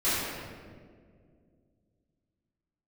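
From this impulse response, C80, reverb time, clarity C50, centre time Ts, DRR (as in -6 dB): -0.5 dB, 2.0 s, -3.0 dB, 132 ms, -16.0 dB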